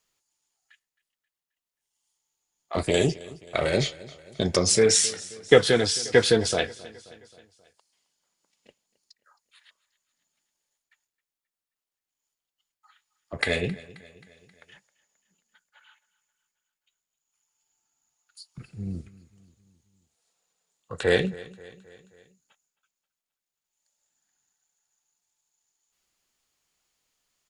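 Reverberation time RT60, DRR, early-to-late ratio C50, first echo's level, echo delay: no reverb audible, no reverb audible, no reverb audible, −20.0 dB, 266 ms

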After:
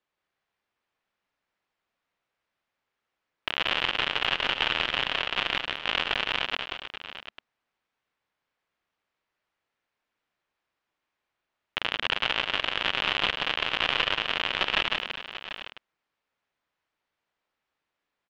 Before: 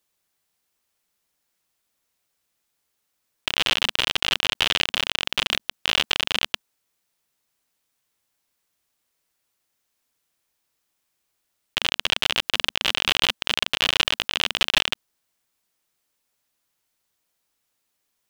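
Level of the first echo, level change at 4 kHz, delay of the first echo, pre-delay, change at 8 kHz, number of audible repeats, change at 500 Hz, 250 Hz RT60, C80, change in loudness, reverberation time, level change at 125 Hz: −19.0 dB, −5.0 dB, 47 ms, no reverb audible, −17.5 dB, 6, −0.5 dB, no reverb audible, no reverb audible, −4.0 dB, no reverb audible, −4.0 dB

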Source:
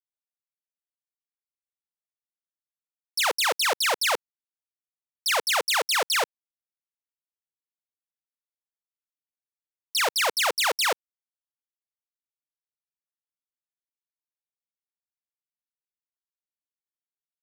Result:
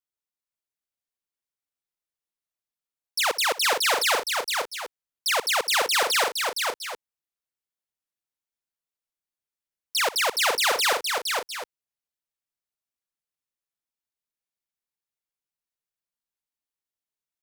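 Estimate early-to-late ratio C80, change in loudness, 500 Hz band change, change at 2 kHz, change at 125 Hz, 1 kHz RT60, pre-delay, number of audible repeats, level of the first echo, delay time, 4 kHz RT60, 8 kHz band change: no reverb audible, +0.5 dB, +2.0 dB, +2.0 dB, can't be measured, no reverb audible, no reverb audible, 3, −19.0 dB, 64 ms, no reverb audible, +2.0 dB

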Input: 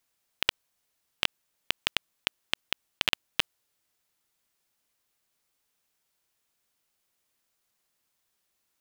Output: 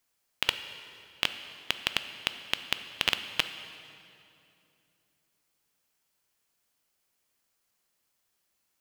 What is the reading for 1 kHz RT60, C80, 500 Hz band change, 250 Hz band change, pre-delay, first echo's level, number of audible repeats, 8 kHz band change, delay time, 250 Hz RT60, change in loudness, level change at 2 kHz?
2.5 s, 11.0 dB, +0.5 dB, +0.5 dB, 8 ms, no echo audible, no echo audible, +0.5 dB, no echo audible, 3.3 s, 0.0 dB, +0.5 dB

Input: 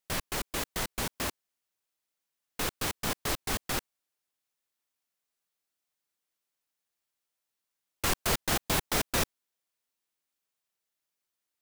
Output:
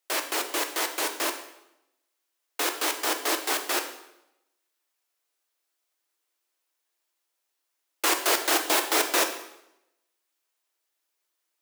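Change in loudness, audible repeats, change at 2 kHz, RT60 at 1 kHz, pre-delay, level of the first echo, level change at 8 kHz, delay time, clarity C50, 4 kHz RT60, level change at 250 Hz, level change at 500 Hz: +6.0 dB, no echo audible, +6.5 dB, 0.85 s, 3 ms, no echo audible, +6.0 dB, no echo audible, 9.0 dB, 0.75 s, +2.5 dB, +6.5 dB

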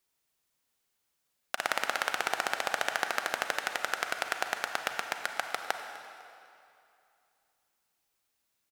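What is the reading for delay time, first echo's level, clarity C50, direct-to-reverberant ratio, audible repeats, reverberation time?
251 ms, −19.0 dB, 6.0 dB, 5.5 dB, 1, 2.6 s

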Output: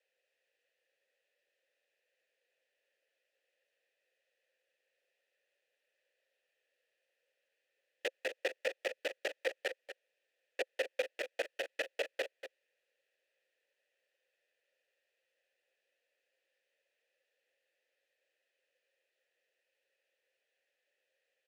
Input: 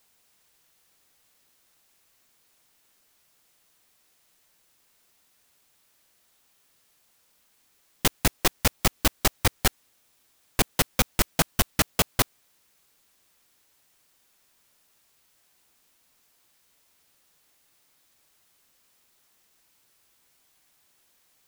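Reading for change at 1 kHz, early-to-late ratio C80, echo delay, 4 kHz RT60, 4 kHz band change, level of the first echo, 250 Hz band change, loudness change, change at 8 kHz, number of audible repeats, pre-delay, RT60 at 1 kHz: −20.0 dB, no reverb audible, 240 ms, no reverb audible, −16.0 dB, −11.0 dB, −25.5 dB, −14.5 dB, −27.0 dB, 1, no reverb audible, no reverb audible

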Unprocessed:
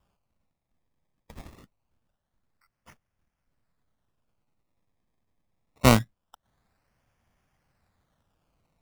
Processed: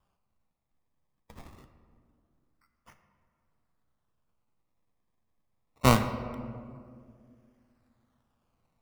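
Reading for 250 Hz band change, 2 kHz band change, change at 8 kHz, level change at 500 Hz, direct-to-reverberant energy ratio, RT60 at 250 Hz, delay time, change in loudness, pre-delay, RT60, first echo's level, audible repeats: −3.5 dB, −3.5 dB, −4.5 dB, −3.0 dB, 7.5 dB, 2.8 s, no echo audible, −6.0 dB, 3 ms, 2.2 s, no echo audible, no echo audible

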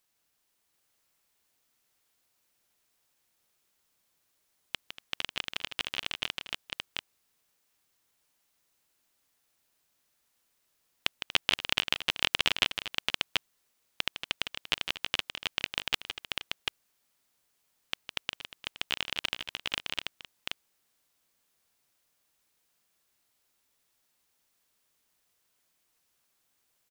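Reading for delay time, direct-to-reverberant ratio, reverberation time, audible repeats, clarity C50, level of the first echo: 158 ms, no reverb audible, no reverb audible, 4, no reverb audible, −9.0 dB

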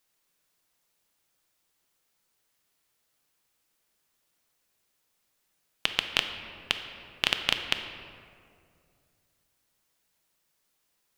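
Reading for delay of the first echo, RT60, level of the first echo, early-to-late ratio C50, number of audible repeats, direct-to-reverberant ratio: no echo audible, 2.3 s, no echo audible, 7.0 dB, no echo audible, 6.0 dB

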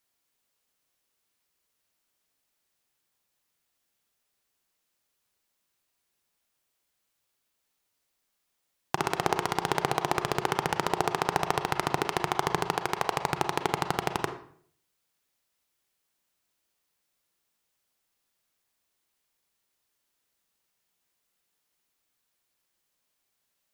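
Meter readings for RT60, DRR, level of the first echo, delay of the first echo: 0.55 s, 7.5 dB, no echo audible, no echo audible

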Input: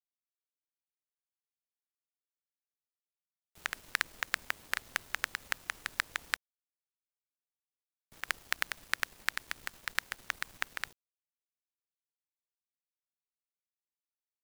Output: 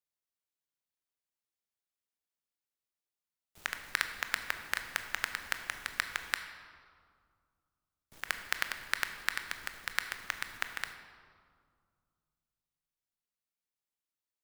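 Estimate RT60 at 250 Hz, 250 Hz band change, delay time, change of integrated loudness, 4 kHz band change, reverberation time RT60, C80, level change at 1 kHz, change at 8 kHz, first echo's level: 2.7 s, +1.5 dB, no echo audible, +0.5 dB, +0.5 dB, 2.0 s, 9.5 dB, +1.0 dB, +0.5 dB, no echo audible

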